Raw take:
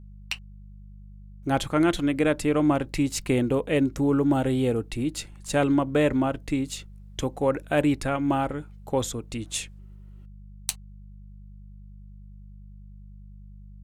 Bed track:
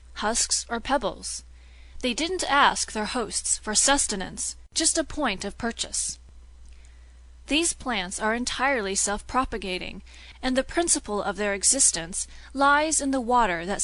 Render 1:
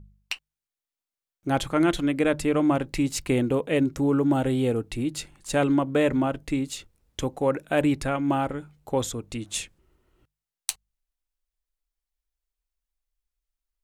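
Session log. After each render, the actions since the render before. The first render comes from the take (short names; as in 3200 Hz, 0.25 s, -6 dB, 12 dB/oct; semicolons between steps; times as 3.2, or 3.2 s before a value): de-hum 50 Hz, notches 4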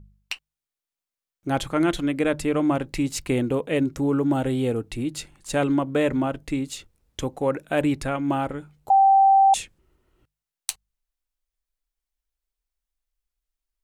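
8.9–9.54 bleep 780 Hz -12 dBFS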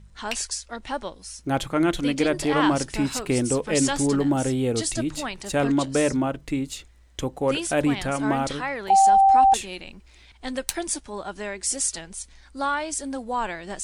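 add bed track -6 dB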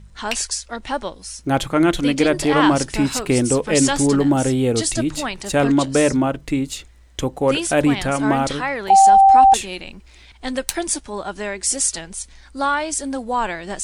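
gain +5.5 dB; limiter -1 dBFS, peak gain reduction 2 dB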